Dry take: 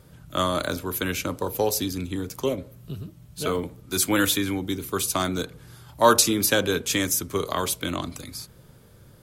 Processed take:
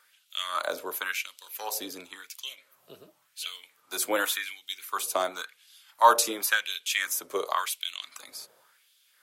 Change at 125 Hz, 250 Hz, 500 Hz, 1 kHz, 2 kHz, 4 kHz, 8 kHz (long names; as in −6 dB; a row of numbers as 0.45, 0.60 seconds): below −30 dB, −17.0 dB, −7.5 dB, 0.0 dB, −1.0 dB, −4.0 dB, −6.5 dB